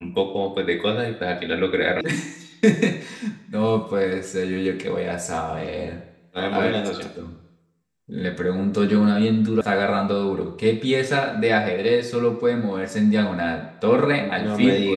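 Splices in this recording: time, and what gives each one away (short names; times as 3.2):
2.01 sound cut off
9.61 sound cut off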